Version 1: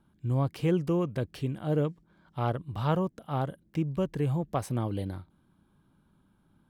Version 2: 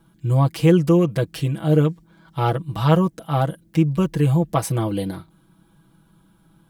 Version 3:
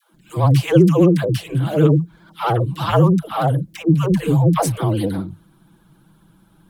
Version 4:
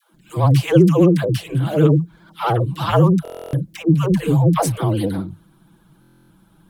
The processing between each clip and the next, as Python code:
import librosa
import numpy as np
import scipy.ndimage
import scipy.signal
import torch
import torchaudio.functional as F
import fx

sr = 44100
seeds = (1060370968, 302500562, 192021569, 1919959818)

y1 = fx.high_shelf(x, sr, hz=4100.0, db=7.0)
y1 = y1 + 0.84 * np.pad(y1, (int(6.1 * sr / 1000.0), 0))[:len(y1)]
y1 = y1 * librosa.db_to_amplitude(7.0)
y2 = fx.dispersion(y1, sr, late='lows', ms=141.0, hz=430.0)
y2 = fx.vibrato(y2, sr, rate_hz=15.0, depth_cents=87.0)
y2 = y2 * librosa.db_to_amplitude(3.0)
y3 = fx.buffer_glitch(y2, sr, at_s=(3.23, 6.0), block=1024, repeats=12)